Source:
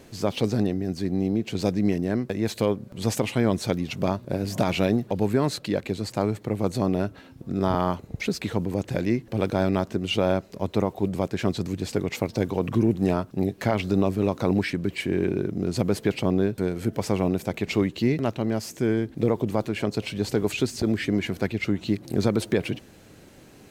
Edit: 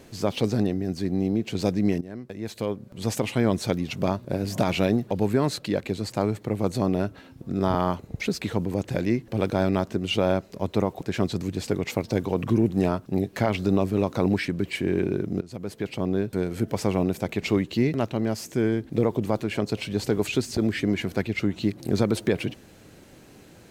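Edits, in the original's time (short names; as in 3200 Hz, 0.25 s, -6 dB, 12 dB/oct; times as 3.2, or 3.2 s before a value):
2.01–3.42 fade in, from -15.5 dB
11.01–11.26 cut
15.66–16.71 fade in, from -18.5 dB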